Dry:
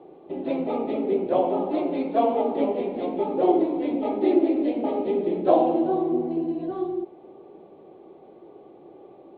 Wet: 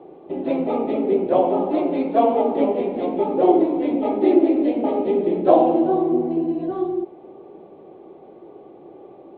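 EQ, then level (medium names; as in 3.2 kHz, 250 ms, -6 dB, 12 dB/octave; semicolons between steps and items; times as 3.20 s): Bessel low-pass 3.5 kHz; +4.5 dB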